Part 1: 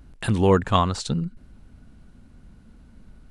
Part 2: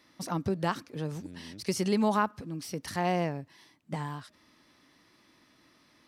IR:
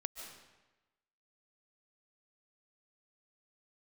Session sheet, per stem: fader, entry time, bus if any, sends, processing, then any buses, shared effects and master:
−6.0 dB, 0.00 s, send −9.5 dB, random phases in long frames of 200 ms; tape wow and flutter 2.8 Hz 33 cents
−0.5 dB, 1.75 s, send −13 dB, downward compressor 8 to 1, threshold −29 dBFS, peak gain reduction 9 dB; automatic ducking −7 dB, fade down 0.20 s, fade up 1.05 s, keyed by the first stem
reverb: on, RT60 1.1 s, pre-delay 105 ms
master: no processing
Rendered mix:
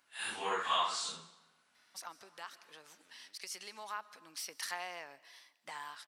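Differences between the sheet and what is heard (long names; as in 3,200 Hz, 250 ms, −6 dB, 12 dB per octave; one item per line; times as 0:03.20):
stem 1: missing tape wow and flutter 2.8 Hz 33 cents
master: extra high-pass filter 1,200 Hz 12 dB per octave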